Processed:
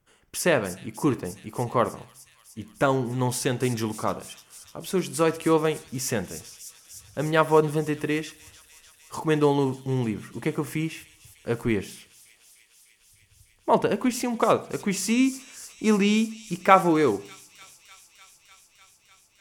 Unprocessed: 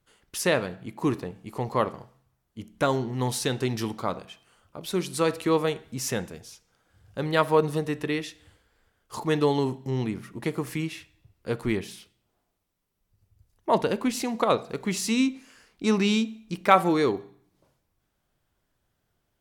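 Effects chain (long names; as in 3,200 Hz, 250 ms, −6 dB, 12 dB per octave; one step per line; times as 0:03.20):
parametric band 4,000 Hz −10 dB 0.32 octaves
delay with a high-pass on its return 300 ms, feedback 82%, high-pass 4,900 Hz, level −9.5 dB
level +2 dB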